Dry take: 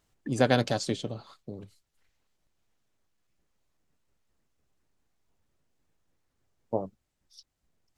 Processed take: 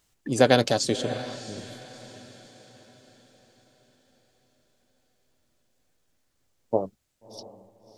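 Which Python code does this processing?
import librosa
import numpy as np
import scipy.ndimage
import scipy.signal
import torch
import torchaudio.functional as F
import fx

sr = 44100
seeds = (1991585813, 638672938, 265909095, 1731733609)

p1 = fx.high_shelf(x, sr, hz=2300.0, db=9.0)
p2 = p1 + fx.echo_diffused(p1, sr, ms=658, feedback_pct=45, wet_db=-13, dry=0)
p3 = fx.dynamic_eq(p2, sr, hz=470.0, q=0.75, threshold_db=-39.0, ratio=4.0, max_db=6)
y = fx.lowpass(p3, sr, hz=10000.0, slope=12, at=(1.02, 1.58))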